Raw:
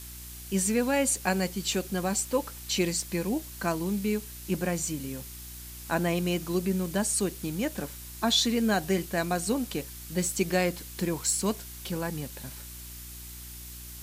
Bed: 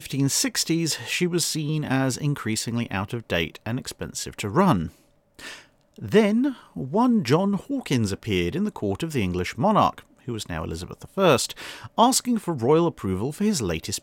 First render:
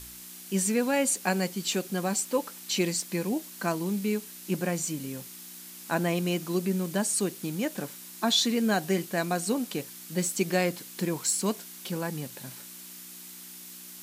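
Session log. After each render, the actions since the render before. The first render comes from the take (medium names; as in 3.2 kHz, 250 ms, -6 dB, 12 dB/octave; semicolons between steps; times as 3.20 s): de-hum 60 Hz, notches 2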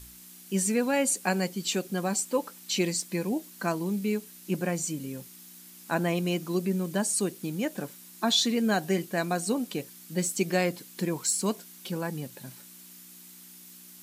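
noise reduction 6 dB, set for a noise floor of -45 dBFS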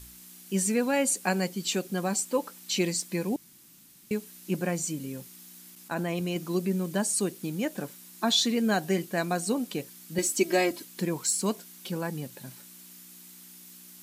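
3.36–4.11 s: room tone; 5.75–6.36 s: level held to a coarse grid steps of 10 dB; 10.18–10.85 s: comb 3.1 ms, depth 88%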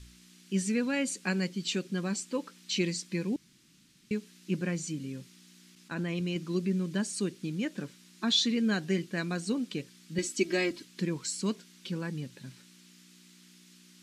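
low-pass 5.1 kHz 12 dB/octave; peaking EQ 740 Hz -14 dB 1.1 oct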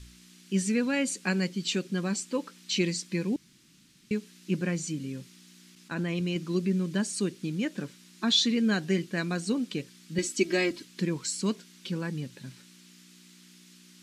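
trim +2.5 dB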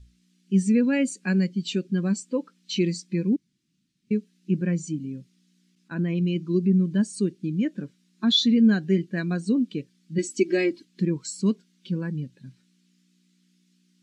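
in parallel at -2 dB: peak limiter -21.5 dBFS, peak gain reduction 9 dB; on the sum: spectral contrast expander 1.5:1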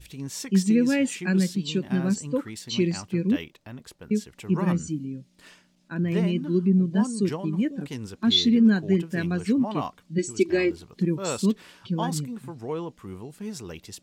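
add bed -12.5 dB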